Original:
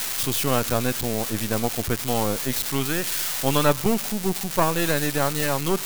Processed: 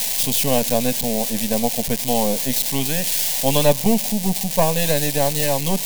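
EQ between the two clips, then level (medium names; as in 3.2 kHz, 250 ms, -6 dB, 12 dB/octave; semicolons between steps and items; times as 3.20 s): static phaser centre 350 Hz, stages 6; +6.0 dB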